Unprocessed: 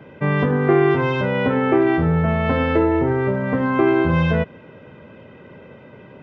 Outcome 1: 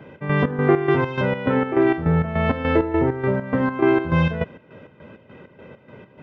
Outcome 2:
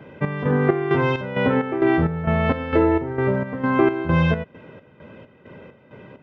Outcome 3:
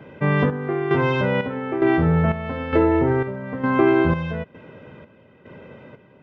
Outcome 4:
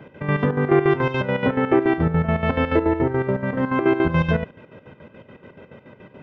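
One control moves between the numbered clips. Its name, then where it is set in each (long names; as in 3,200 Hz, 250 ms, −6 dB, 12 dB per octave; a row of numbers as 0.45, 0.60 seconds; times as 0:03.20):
square-wave tremolo, speed: 3.4, 2.2, 1.1, 7 Hertz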